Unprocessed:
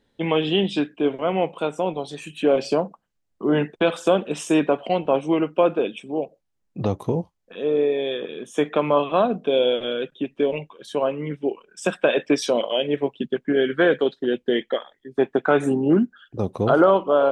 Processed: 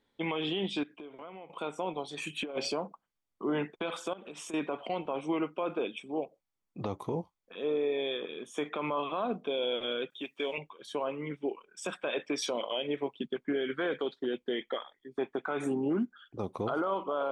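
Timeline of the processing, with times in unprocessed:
0.83–1.50 s: compression 8:1, threshold -35 dBFS
2.17–2.72 s: compressor with a negative ratio -23 dBFS, ratio -0.5
4.13–4.54 s: compression 16:1, threshold -32 dBFS
10.10–10.58 s: tilt EQ +3.5 dB/octave
whole clip: tone controls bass -10 dB, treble -3 dB; comb 0.9 ms, depth 33%; peak limiter -18 dBFS; trim -5 dB

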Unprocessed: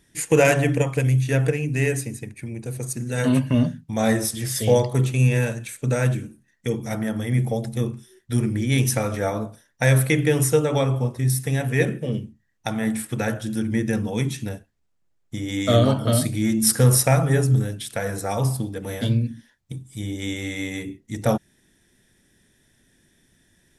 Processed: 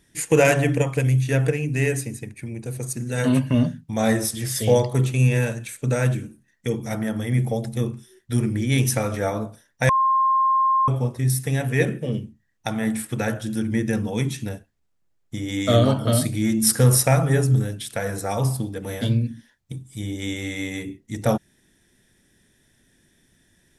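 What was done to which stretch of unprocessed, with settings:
9.89–10.88 s: bleep 1.06 kHz -15.5 dBFS

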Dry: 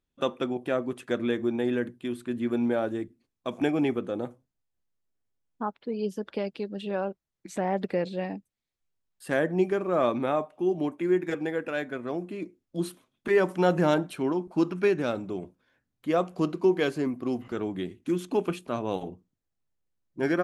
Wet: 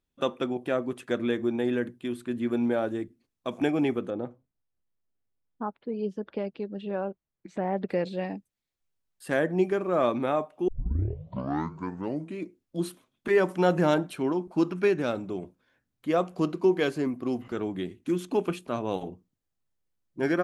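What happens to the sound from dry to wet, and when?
4.10–7.89 s: tape spacing loss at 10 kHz 23 dB
10.68 s: tape start 1.73 s

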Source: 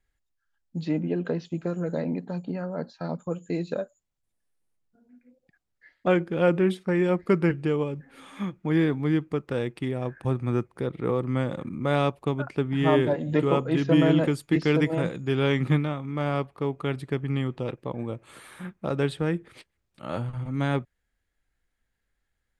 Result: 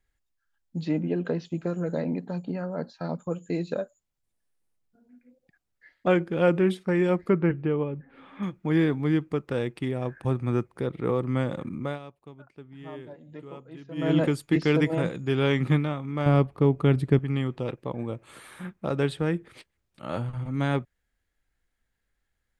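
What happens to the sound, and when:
7.29–8.43 s: distance through air 400 m
11.76–14.18 s: dip -19.5 dB, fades 0.23 s
16.26–17.19 s: bass shelf 420 Hz +11 dB

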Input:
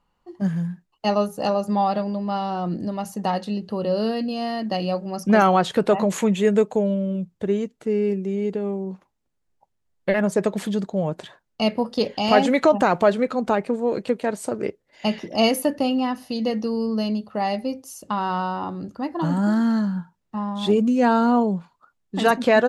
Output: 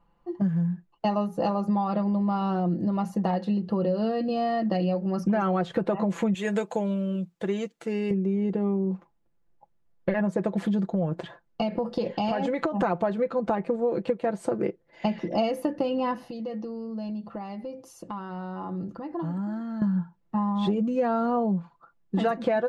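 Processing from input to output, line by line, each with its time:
6.34–8.11 s: tilt EQ +4 dB/octave
10.88–12.83 s: compression, threshold -23 dBFS
16.24–19.82 s: compression 5:1, threshold -36 dBFS
whole clip: low-pass 1.2 kHz 6 dB/octave; comb 5.9 ms, depth 60%; compression 6:1, threshold -26 dBFS; trim +3.5 dB

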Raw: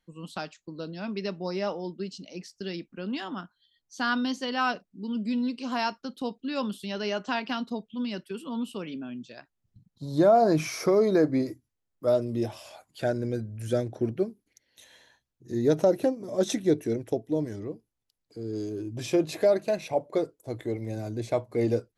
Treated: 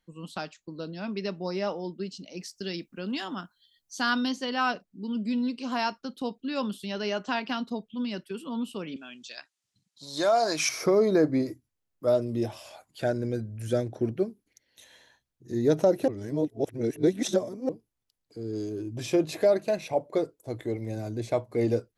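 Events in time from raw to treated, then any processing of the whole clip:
2.37–4.29 s: treble shelf 4.9 kHz +10 dB
8.96–10.69 s: frequency weighting ITU-R 468
16.08–17.69 s: reverse

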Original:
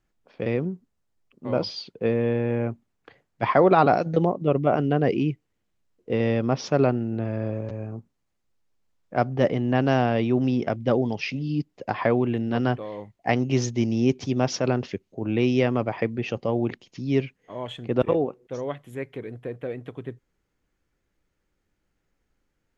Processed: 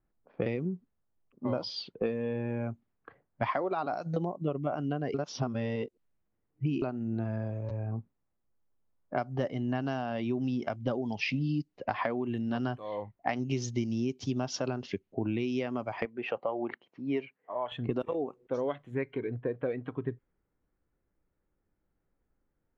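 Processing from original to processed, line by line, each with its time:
5.14–6.82 s: reverse
16.05–17.72 s: band-pass filter 1 kHz, Q 0.65
whole clip: level-controlled noise filter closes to 1.3 kHz, open at -19.5 dBFS; compression 20:1, threshold -31 dBFS; spectral noise reduction 8 dB; trim +4.5 dB

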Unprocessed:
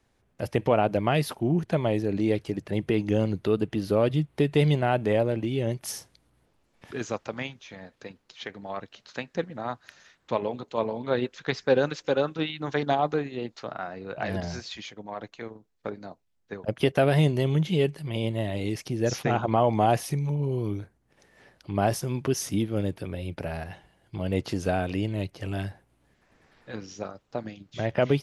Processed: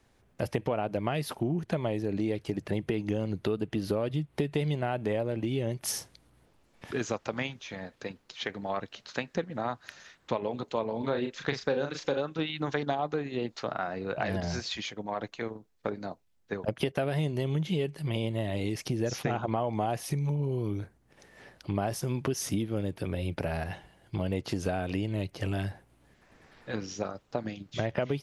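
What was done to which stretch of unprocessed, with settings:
10.98–12.20 s: doubling 36 ms -6.5 dB
whole clip: compression 6:1, threshold -30 dBFS; trim +3.5 dB

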